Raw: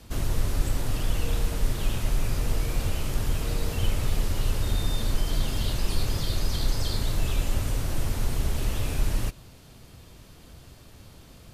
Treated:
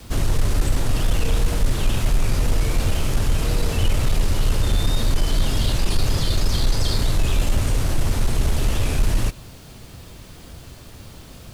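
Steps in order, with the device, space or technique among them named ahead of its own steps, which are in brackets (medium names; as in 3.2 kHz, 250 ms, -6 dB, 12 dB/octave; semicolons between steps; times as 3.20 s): compact cassette (saturation -17 dBFS, distortion -18 dB; low-pass 12 kHz 12 dB/octave; wow and flutter; white noise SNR 37 dB); trim +8 dB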